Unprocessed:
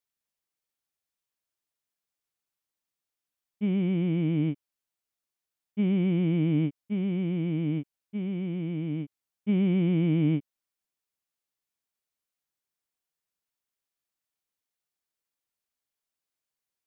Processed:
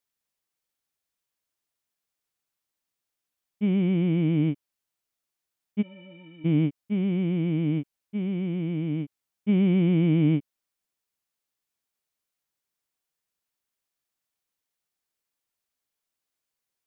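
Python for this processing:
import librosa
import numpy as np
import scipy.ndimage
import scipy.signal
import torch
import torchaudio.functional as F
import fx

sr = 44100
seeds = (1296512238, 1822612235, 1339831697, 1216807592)

y = fx.stiff_resonator(x, sr, f0_hz=270.0, decay_s=0.36, stiffness=0.03, at=(5.81, 6.44), fade=0.02)
y = F.gain(torch.from_numpy(y), 3.0).numpy()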